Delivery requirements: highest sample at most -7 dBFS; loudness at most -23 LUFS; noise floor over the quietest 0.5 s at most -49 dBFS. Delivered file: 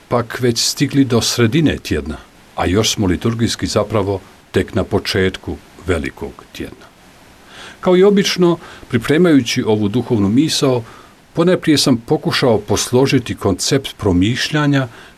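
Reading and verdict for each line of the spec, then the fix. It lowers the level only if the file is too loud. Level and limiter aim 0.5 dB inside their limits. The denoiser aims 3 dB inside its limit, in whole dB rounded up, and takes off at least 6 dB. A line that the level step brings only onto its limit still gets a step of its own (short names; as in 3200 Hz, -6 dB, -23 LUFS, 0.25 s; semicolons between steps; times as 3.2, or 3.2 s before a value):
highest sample -3.0 dBFS: fail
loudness -15.5 LUFS: fail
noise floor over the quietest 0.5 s -44 dBFS: fail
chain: gain -8 dB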